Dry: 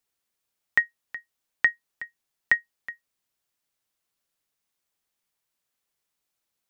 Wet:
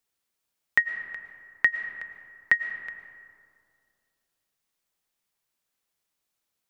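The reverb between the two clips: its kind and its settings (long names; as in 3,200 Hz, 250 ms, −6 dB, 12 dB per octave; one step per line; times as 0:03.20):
comb and all-pass reverb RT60 2.4 s, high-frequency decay 0.4×, pre-delay 75 ms, DRR 9 dB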